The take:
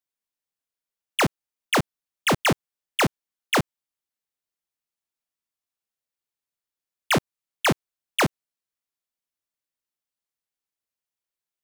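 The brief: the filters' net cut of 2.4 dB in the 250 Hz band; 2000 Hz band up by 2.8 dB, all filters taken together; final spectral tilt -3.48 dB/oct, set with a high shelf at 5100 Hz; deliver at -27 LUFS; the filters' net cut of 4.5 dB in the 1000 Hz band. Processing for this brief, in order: bell 250 Hz -3 dB; bell 1000 Hz -7.5 dB; bell 2000 Hz +5 dB; high shelf 5100 Hz +4 dB; gain -3 dB

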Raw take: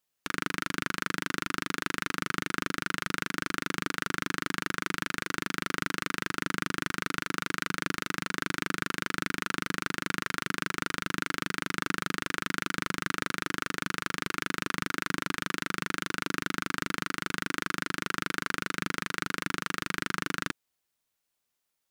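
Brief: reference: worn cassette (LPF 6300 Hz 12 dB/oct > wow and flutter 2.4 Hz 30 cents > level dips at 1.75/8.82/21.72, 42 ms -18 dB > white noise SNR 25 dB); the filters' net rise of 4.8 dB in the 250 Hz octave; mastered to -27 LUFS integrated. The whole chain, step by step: LPF 6300 Hz 12 dB/oct; bell 250 Hz +6 dB; wow and flutter 2.4 Hz 30 cents; level dips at 1.75/8.82/21.72, 42 ms -18 dB; white noise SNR 25 dB; gain +4.5 dB

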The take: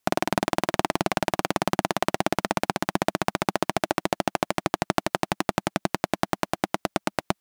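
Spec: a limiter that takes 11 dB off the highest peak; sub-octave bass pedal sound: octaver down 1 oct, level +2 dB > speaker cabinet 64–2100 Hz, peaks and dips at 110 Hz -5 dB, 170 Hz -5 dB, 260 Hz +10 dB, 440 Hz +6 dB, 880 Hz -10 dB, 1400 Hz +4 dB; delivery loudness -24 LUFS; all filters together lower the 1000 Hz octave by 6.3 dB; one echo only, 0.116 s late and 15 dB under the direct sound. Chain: bell 1000 Hz -5 dB; limiter -13.5 dBFS; echo 0.116 s -15 dB; octaver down 1 oct, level +2 dB; speaker cabinet 64–2100 Hz, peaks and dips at 110 Hz -5 dB, 170 Hz -5 dB, 260 Hz +10 dB, 440 Hz +6 dB, 880 Hz -10 dB, 1400 Hz +4 dB; gain +11.5 dB

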